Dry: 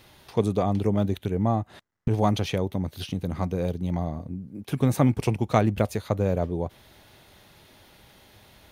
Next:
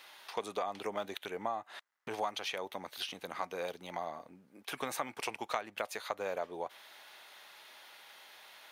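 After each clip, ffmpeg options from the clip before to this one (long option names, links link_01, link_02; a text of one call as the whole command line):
ffmpeg -i in.wav -af "highpass=1000,acompressor=threshold=-36dB:ratio=6,highshelf=frequency=3900:gain=-7,volume=4.5dB" out.wav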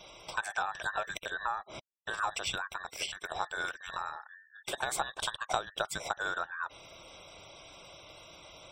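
ffmpeg -i in.wav -af "afftfilt=real='real(if(between(b,1,1012),(2*floor((b-1)/92)+1)*92-b,b),0)':imag='imag(if(between(b,1,1012),(2*floor((b-1)/92)+1)*92-b,b),0)*if(between(b,1,1012),-1,1)':win_size=2048:overlap=0.75,afftfilt=real='re*gte(hypot(re,im),0.00126)':imag='im*gte(hypot(re,im),0.00126)':win_size=1024:overlap=0.75,equalizer=frequency=250:width_type=o:width=0.33:gain=-10,equalizer=frequency=630:width_type=o:width=0.33:gain=8,equalizer=frequency=1250:width_type=o:width=0.33:gain=-5,equalizer=frequency=2500:width_type=o:width=0.33:gain=-3,equalizer=frequency=8000:width_type=o:width=0.33:gain=7,equalizer=frequency=12500:width_type=o:width=0.33:gain=-9,volume=4dB" out.wav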